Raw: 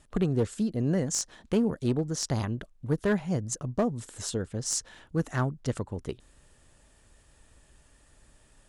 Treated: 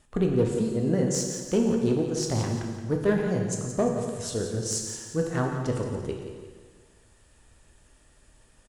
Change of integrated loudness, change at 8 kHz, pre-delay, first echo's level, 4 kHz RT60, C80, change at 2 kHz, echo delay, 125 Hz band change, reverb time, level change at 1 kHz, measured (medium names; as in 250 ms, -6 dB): +3.0 dB, +1.0 dB, 5 ms, -10.0 dB, 1.5 s, 4.0 dB, +1.5 dB, 173 ms, +1.5 dB, 1.6 s, +2.5 dB